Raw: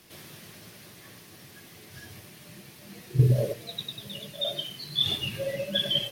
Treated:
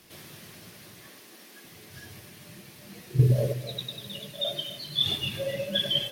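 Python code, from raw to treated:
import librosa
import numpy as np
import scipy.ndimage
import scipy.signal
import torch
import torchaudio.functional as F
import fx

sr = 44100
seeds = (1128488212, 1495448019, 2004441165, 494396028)

y = fx.brickwall_highpass(x, sr, low_hz=190.0, at=(1.07, 1.64))
y = fx.echo_feedback(y, sr, ms=257, feedback_pct=28, wet_db=-14.0)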